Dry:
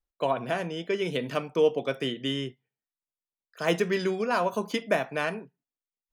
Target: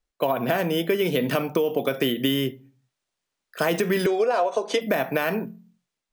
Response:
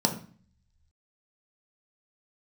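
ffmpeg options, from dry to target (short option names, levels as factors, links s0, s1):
-filter_complex "[0:a]dynaudnorm=f=160:g=5:m=2.11,alimiter=limit=0.224:level=0:latency=1:release=26,asplit=2[s0][s1];[1:a]atrim=start_sample=2205,afade=t=out:st=0.44:d=0.01,atrim=end_sample=19845[s2];[s1][s2]afir=irnorm=-1:irlink=0,volume=0.0316[s3];[s0][s3]amix=inputs=2:normalize=0,acrusher=samples=3:mix=1:aa=0.000001,asettb=1/sr,asplit=3[s4][s5][s6];[s4]atrim=end=4.064[s7];[s5]atrim=start=4.06:end=4.81,asetpts=PTS-STARTPTS,afade=t=in:d=0.004:c=qsin,afade=t=out:st=0.746:d=0.004:c=qsin,highpass=f=320:w=0.5412,highpass=f=320:w=1.3066,equalizer=f=470:t=q:w=4:g=7,equalizer=f=690:t=q:w=4:g=8,equalizer=f=3700:t=q:w=4:g=4,equalizer=f=5900:t=q:w=4:g=5,lowpass=f=8400:w=0.5412,lowpass=f=8400:w=1.3066[s8];[s6]atrim=start=4.806[s9];[s7][s8]acrossfade=d=0.004:c1=hsin:c2=qsin[s10];[s10][s9]acrossfade=d=0.004:c1=qsin:c2=hsin,acompressor=threshold=0.0631:ratio=12,volume=1.88"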